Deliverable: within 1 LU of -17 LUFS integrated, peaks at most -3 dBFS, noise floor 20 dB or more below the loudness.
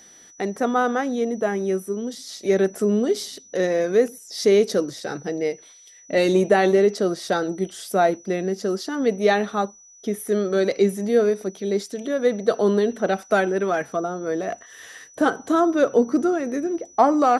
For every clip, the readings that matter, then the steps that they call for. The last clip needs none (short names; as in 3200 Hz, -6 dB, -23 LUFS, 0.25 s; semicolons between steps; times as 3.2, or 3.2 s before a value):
steady tone 5900 Hz; tone level -47 dBFS; loudness -22.0 LUFS; peak -4.5 dBFS; loudness target -17.0 LUFS
-> notch 5900 Hz, Q 30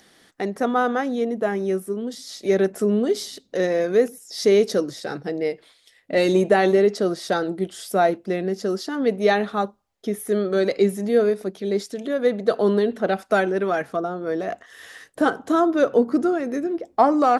steady tone none; loudness -22.5 LUFS; peak -4.5 dBFS; loudness target -17.0 LUFS
-> gain +5.5 dB; limiter -3 dBFS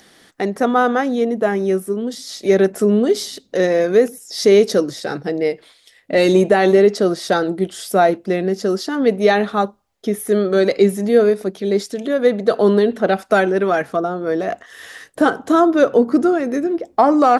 loudness -17.0 LUFS; peak -3.0 dBFS; noise floor -53 dBFS